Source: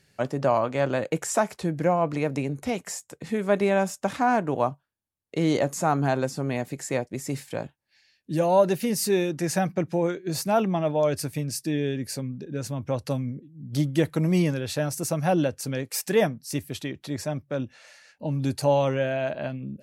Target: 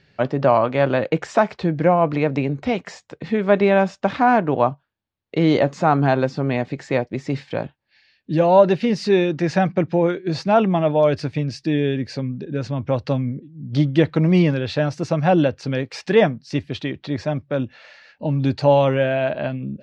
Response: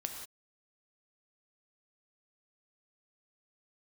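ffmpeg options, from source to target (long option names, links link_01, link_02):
-af "lowpass=frequency=4300:width=0.5412,lowpass=frequency=4300:width=1.3066,volume=6.5dB"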